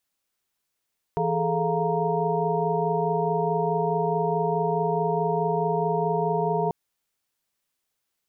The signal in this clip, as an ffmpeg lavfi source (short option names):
-f lavfi -i "aevalsrc='0.0398*(sin(2*PI*164.81*t)+sin(2*PI*415.3*t)+sin(2*PI*440*t)+sin(2*PI*698.46*t)+sin(2*PI*932.33*t))':d=5.54:s=44100"